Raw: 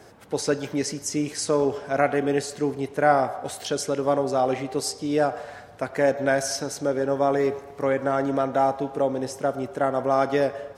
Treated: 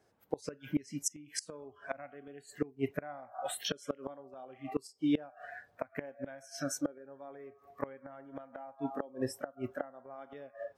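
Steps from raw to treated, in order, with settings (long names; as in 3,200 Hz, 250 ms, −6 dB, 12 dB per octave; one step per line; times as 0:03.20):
noise reduction from a noise print of the clip's start 21 dB
gate with flip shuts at −18 dBFS, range −25 dB
level −1.5 dB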